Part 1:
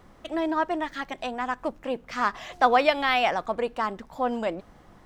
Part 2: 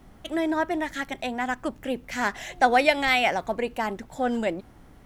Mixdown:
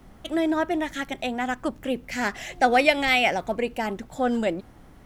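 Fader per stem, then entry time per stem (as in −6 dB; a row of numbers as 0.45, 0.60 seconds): −9.0, +1.0 decibels; 0.00, 0.00 seconds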